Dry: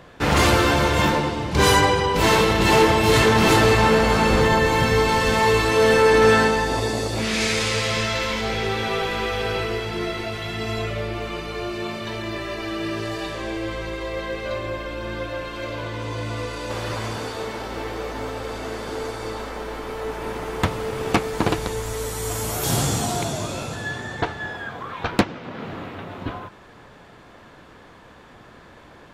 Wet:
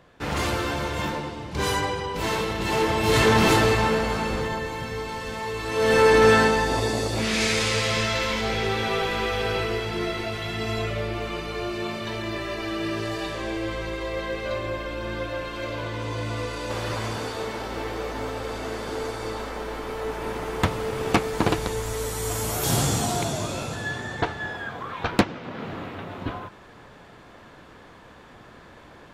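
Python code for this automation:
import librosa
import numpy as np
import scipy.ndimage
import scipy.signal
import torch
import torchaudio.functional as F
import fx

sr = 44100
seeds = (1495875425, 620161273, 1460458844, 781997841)

y = fx.gain(x, sr, db=fx.line((2.69, -9.0), (3.33, -1.0), (4.8, -13.0), (5.55, -13.0), (5.99, -1.0)))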